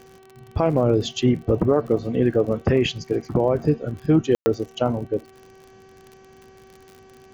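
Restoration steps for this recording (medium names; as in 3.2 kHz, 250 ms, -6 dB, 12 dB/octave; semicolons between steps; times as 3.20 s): de-click; de-hum 382 Hz, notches 8; room tone fill 4.35–4.46 s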